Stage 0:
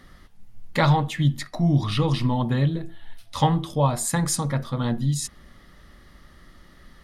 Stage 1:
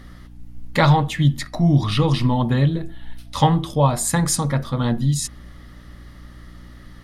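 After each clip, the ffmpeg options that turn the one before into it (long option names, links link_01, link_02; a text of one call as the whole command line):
ffmpeg -i in.wav -af "aeval=exprs='val(0)+0.00562*(sin(2*PI*60*n/s)+sin(2*PI*2*60*n/s)/2+sin(2*PI*3*60*n/s)/3+sin(2*PI*4*60*n/s)/4+sin(2*PI*5*60*n/s)/5)':channel_layout=same,volume=4dB" out.wav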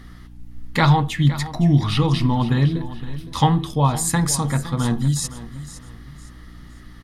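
ffmpeg -i in.wav -af "equalizer=frequency=570:width_type=o:width=0.3:gain=-9.5,aecho=1:1:513|1026|1539:0.178|0.0569|0.0182" out.wav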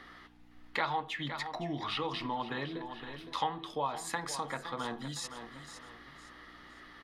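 ffmpeg -i in.wav -filter_complex "[0:a]acrossover=split=360 4300:gain=0.0631 1 0.158[link_01][link_02][link_03];[link_01][link_02][link_03]amix=inputs=3:normalize=0,acompressor=threshold=-39dB:ratio=2" out.wav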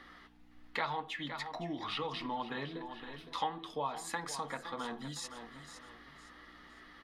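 ffmpeg -i in.wav -af "flanger=delay=3.5:depth=1.1:regen=-59:speed=1.7:shape=sinusoidal,volume=1.5dB" out.wav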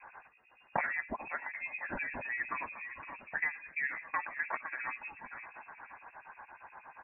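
ffmpeg -i in.wav -filter_complex "[0:a]acrossover=split=780[link_01][link_02];[link_01]aeval=exprs='val(0)*(1-1/2+1/2*cos(2*PI*8.5*n/s))':channel_layout=same[link_03];[link_02]aeval=exprs='val(0)*(1-1/2-1/2*cos(2*PI*8.5*n/s))':channel_layout=same[link_04];[link_03][link_04]amix=inputs=2:normalize=0,aemphasis=mode=production:type=riaa,lowpass=frequency=2400:width_type=q:width=0.5098,lowpass=frequency=2400:width_type=q:width=0.6013,lowpass=frequency=2400:width_type=q:width=0.9,lowpass=frequency=2400:width_type=q:width=2.563,afreqshift=-2800,volume=7.5dB" out.wav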